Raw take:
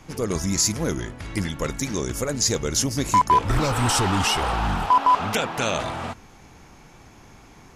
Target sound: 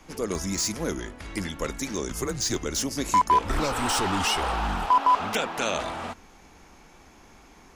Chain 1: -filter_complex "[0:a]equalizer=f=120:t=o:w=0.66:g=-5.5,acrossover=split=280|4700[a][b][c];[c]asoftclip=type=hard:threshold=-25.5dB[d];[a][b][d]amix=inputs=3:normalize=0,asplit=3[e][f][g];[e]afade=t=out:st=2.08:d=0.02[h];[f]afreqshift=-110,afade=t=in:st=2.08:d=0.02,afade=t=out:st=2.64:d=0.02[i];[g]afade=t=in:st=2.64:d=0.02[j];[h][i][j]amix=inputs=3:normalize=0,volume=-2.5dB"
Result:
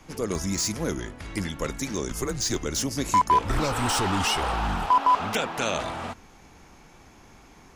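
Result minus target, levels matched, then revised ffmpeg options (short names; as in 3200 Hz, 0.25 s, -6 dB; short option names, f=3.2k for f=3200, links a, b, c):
125 Hz band +3.0 dB
-filter_complex "[0:a]equalizer=f=120:t=o:w=0.66:g=-13.5,acrossover=split=280|4700[a][b][c];[c]asoftclip=type=hard:threshold=-25.5dB[d];[a][b][d]amix=inputs=3:normalize=0,asplit=3[e][f][g];[e]afade=t=out:st=2.08:d=0.02[h];[f]afreqshift=-110,afade=t=in:st=2.08:d=0.02,afade=t=out:st=2.64:d=0.02[i];[g]afade=t=in:st=2.64:d=0.02[j];[h][i][j]amix=inputs=3:normalize=0,volume=-2.5dB"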